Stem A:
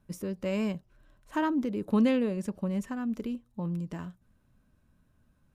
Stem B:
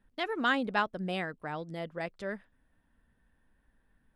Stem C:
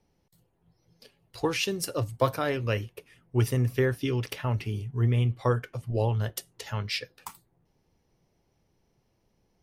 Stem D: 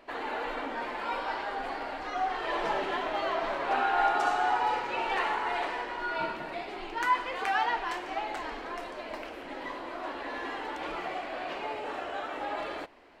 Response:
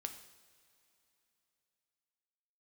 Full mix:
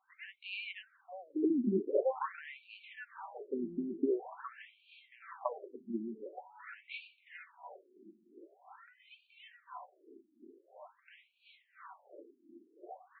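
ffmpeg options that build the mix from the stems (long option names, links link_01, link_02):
-filter_complex "[0:a]equalizer=frequency=1900:width=0.35:gain=10,volume=-4dB[link_01];[1:a]acrossover=split=1500[link_02][link_03];[link_02]aeval=exprs='val(0)*(1-1/2+1/2*cos(2*PI*1.8*n/s))':channel_layout=same[link_04];[link_03]aeval=exprs='val(0)*(1-1/2-1/2*cos(2*PI*1.8*n/s))':channel_layout=same[link_05];[link_04][link_05]amix=inputs=2:normalize=0,volume=-8.5dB,asplit=3[link_06][link_07][link_08];[link_07]volume=-17dB[link_09];[link_08]volume=-23dB[link_10];[2:a]lowpass=1600,lowshelf=frequency=220:gain=11.5,acompressor=threshold=-21dB:ratio=10,volume=-0.5dB[link_11];[3:a]acompressor=threshold=-31dB:ratio=6,aeval=exprs='val(0)*pow(10,-19*(0.5-0.5*cos(2*PI*2.9*n/s))/20)':channel_layout=same,adelay=1850,volume=-8dB,asplit=2[link_12][link_13];[link_13]volume=-11dB[link_14];[4:a]atrim=start_sample=2205[link_15];[link_09][link_14]amix=inputs=2:normalize=0[link_16];[link_16][link_15]afir=irnorm=-1:irlink=0[link_17];[link_10]aecho=0:1:359:1[link_18];[link_01][link_06][link_11][link_12][link_17][link_18]amix=inputs=6:normalize=0,highshelf=frequency=4100:gain=-7,aecho=1:1:5.2:0.3,afftfilt=real='re*between(b*sr/1024,260*pow(3300/260,0.5+0.5*sin(2*PI*0.46*pts/sr))/1.41,260*pow(3300/260,0.5+0.5*sin(2*PI*0.46*pts/sr))*1.41)':imag='im*between(b*sr/1024,260*pow(3300/260,0.5+0.5*sin(2*PI*0.46*pts/sr))/1.41,260*pow(3300/260,0.5+0.5*sin(2*PI*0.46*pts/sr))*1.41)':win_size=1024:overlap=0.75"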